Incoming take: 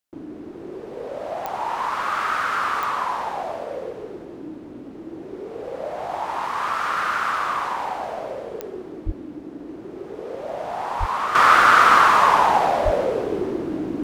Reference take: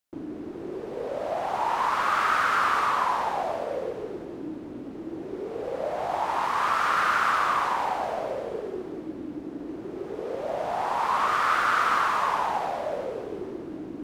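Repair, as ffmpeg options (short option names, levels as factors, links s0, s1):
-filter_complex "[0:a]adeclick=t=4,asplit=3[s0][s1][s2];[s0]afade=t=out:st=9.05:d=0.02[s3];[s1]highpass=f=140:w=0.5412,highpass=f=140:w=1.3066,afade=t=in:st=9.05:d=0.02,afade=t=out:st=9.17:d=0.02[s4];[s2]afade=t=in:st=9.17:d=0.02[s5];[s3][s4][s5]amix=inputs=3:normalize=0,asplit=3[s6][s7][s8];[s6]afade=t=out:st=10.99:d=0.02[s9];[s7]highpass=f=140:w=0.5412,highpass=f=140:w=1.3066,afade=t=in:st=10.99:d=0.02,afade=t=out:st=11.11:d=0.02[s10];[s8]afade=t=in:st=11.11:d=0.02[s11];[s9][s10][s11]amix=inputs=3:normalize=0,asplit=3[s12][s13][s14];[s12]afade=t=out:st=12.84:d=0.02[s15];[s13]highpass=f=140:w=0.5412,highpass=f=140:w=1.3066,afade=t=in:st=12.84:d=0.02,afade=t=out:st=12.96:d=0.02[s16];[s14]afade=t=in:st=12.96:d=0.02[s17];[s15][s16][s17]amix=inputs=3:normalize=0,asetnsamples=n=441:p=0,asendcmd='11.35 volume volume -10dB',volume=1"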